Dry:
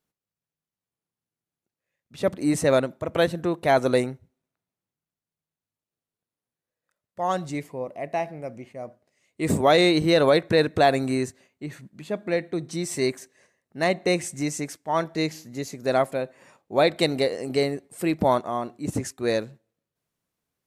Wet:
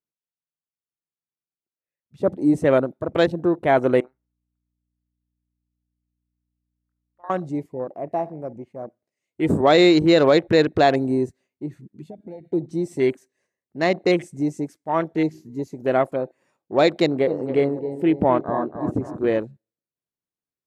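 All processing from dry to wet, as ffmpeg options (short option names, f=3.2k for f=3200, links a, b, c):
-filter_complex "[0:a]asettb=1/sr,asplit=3[a][b][c];[a]atrim=end=4.004[d];[b]atrim=start=4:end=7.3,asetpts=PTS-STARTPTS,afade=t=in:d=0.004:c=qsin,afade=t=out:st=3.296:d=0.004:c=qsin,bandpass=f=1.2k:t=q:w=2.3,acompressor=threshold=-35dB:ratio=6:attack=3.2:release=140:knee=1:detection=peak,aeval=exprs='val(0)+0.000708*(sin(2*PI*60*n/s)+sin(2*PI*2*60*n/s)/2+sin(2*PI*3*60*n/s)/3+sin(2*PI*4*60*n/s)/4+sin(2*PI*5*60*n/s)/5)':c=same[e];[c]atrim=start=7.296[f];[d][e]acrossfade=d=0.004:c1=hsin:c2=qsin[g];[g][f]acrossfade=d=0.004:c1=qsin:c2=hsin,asettb=1/sr,asplit=3[h][i][j];[h]atrim=end=12.024[k];[i]atrim=start=12.02:end=12.53,asetpts=PTS-STARTPTS,afade=t=in:d=0.004:c=qsin,afade=t=out:st=0.506:d=0.004:c=qsin,equalizer=f=1.2k:w=1.4:g=-10.5,aecho=1:1:1.4:0.46,atrim=end_sample=22491,acompressor=threshold=-36dB:ratio=8:attack=3.2:release=140:knee=1:detection=peak[l];[j]atrim=start=12.526[m];[k][l]acrossfade=d=0.004:c1=hsin:c2=qsin[n];[n][m]acrossfade=d=0.004:c1=qsin:c2=hsin,asettb=1/sr,asplit=3[o][p][q];[o]atrim=end=17.004[r];[p]atrim=start=17:end=19.4,asetpts=PTS-STARTPTS,afade=t=in:d=0.004:c=qsin,afade=t=out:st=2.396:d=0.004:c=qsin,lowpass=f=3.1k:p=1,asplit=2[s][t];[t]adelay=266,lowpass=f=2.4k:p=1,volume=-9.5dB,asplit=2[u][v];[v]adelay=266,lowpass=f=2.4k:p=1,volume=0.5,asplit=2[w][x];[x]adelay=266,lowpass=f=2.4k:p=1,volume=0.5,asplit=2[y][z];[z]adelay=266,lowpass=f=2.4k:p=1,volume=0.5,asplit=2[aa][ab];[ab]adelay=266,lowpass=f=2.4k:p=1,volume=0.5,asplit=2[ac][ad];[ad]adelay=266,lowpass=f=2.4k:p=1,volume=0.5[ae];[s][u][w][y][aa][ac][ae]amix=inputs=7:normalize=0,atrim=end_sample=105840[af];[q]atrim=start=19.396[ag];[r][af]acrossfade=d=0.004:c1=hsin:c2=qsin[ah];[ah][ag]acrossfade=d=0.004:c1=qsin:c2=hsin,afwtdn=0.0178,equalizer=f=340:t=o:w=0.61:g=5,volume=1.5dB"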